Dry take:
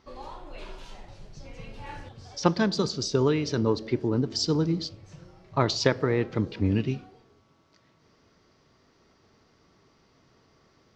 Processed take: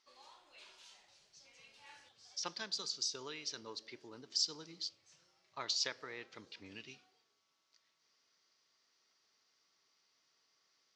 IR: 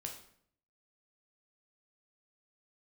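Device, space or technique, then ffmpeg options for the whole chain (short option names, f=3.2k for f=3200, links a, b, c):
piezo pickup straight into a mixer: -af "lowpass=7.2k,aderivative,volume=-1dB"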